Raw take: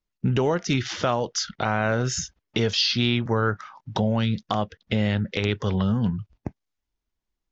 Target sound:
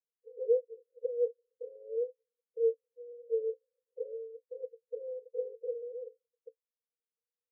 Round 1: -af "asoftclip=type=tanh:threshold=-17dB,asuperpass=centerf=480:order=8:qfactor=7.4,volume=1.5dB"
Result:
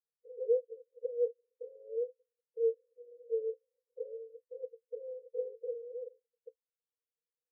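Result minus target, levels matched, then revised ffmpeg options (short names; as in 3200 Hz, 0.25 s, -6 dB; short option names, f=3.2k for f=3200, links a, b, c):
soft clip: distortion +15 dB
-af "asoftclip=type=tanh:threshold=-7dB,asuperpass=centerf=480:order=8:qfactor=7.4,volume=1.5dB"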